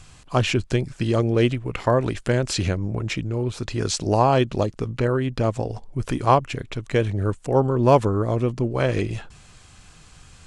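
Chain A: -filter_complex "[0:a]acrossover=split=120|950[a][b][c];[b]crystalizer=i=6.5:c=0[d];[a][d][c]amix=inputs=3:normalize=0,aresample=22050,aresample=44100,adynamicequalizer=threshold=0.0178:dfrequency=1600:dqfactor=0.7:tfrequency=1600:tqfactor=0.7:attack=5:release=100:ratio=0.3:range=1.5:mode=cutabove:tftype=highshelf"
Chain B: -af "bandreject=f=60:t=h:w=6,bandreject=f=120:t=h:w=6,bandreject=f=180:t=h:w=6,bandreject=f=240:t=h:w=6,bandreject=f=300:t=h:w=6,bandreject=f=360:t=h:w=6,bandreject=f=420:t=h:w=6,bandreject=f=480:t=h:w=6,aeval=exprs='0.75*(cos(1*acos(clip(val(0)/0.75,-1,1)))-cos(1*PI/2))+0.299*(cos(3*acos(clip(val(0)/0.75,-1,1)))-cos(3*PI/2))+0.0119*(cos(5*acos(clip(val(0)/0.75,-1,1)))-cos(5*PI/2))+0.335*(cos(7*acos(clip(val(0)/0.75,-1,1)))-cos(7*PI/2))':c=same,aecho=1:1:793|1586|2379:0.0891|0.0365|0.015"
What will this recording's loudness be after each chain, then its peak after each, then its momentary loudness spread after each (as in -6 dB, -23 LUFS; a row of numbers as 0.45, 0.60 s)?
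-22.5, -16.5 LUFS; -1.5, -2.0 dBFS; 9, 8 LU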